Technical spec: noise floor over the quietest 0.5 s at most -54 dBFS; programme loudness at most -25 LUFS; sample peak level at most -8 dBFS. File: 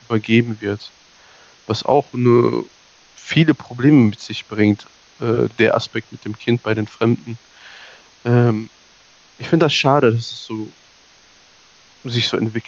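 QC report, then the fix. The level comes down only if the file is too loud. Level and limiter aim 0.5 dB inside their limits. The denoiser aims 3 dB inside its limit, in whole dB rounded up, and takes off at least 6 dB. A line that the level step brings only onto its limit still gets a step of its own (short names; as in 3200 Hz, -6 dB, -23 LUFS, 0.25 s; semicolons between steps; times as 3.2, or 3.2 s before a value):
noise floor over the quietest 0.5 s -50 dBFS: fail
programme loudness -18.0 LUFS: fail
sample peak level -2.0 dBFS: fail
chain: gain -7.5 dB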